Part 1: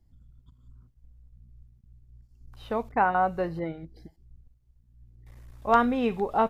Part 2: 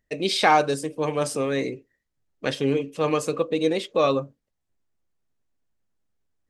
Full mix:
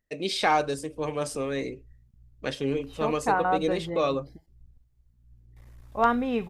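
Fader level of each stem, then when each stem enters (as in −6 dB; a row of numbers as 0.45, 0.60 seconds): −1.5, −5.0 decibels; 0.30, 0.00 seconds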